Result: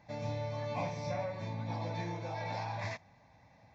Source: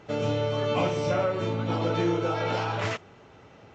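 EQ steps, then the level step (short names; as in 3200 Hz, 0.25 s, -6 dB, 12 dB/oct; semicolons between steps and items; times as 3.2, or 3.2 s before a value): fixed phaser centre 2000 Hz, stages 8; -7.0 dB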